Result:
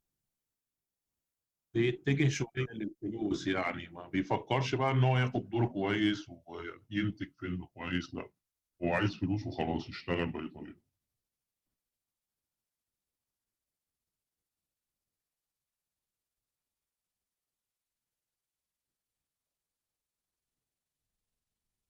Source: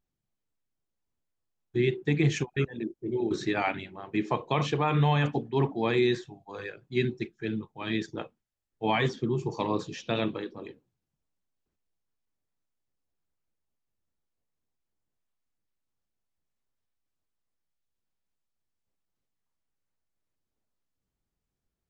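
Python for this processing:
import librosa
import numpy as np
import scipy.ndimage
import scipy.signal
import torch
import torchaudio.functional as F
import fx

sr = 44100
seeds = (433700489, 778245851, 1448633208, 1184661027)

y = fx.pitch_glide(x, sr, semitones=-10.0, runs='starting unshifted')
y = fx.cheby_harmonics(y, sr, harmonics=(8,), levels_db=(-36,), full_scale_db=-13.0)
y = fx.high_shelf(y, sr, hz=6600.0, db=11.0)
y = y * 10.0 ** (-3.0 / 20.0)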